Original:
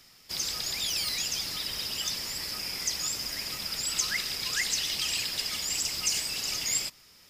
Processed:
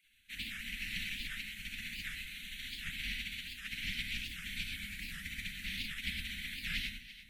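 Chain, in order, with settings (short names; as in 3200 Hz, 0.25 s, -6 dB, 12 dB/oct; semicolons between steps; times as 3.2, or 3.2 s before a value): spectral gate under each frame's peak -20 dB weak; elliptic band-stop 190–2100 Hz, stop band 40 dB; high shelf 12000 Hz -4 dB; in parallel at +2 dB: compressor, threshold -55 dBFS, peak gain reduction 17 dB; on the sum: air absorption 500 m; fixed phaser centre 320 Hz, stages 4; echo with dull and thin repeats by turns 0.171 s, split 890 Hz, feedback 56%, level -10 dB; non-linear reverb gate 0.13 s rising, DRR 3 dB; record warp 78 rpm, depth 250 cents; gain +15 dB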